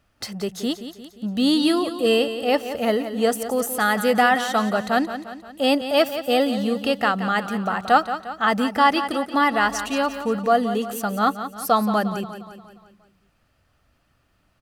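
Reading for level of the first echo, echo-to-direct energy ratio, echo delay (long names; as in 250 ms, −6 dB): −11.0 dB, −9.5 dB, 176 ms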